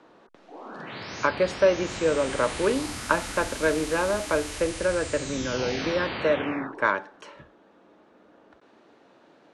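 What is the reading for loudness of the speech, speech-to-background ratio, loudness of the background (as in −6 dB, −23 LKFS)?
−26.5 LKFS, 8.0 dB, −34.5 LKFS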